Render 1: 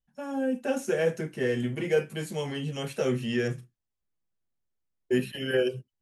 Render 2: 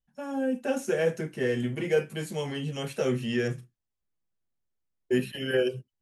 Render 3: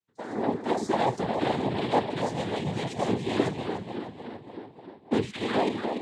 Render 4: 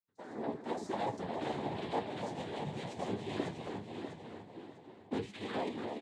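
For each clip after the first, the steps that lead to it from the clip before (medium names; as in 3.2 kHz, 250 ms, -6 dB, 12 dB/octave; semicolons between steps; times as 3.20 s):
no audible change
tape echo 295 ms, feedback 72%, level -4.5 dB, low-pass 3 kHz; noise-vocoded speech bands 6
flange 0.93 Hz, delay 9.4 ms, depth 4.7 ms, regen +53%; feedback delay 648 ms, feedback 29%, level -8.5 dB; trim -7 dB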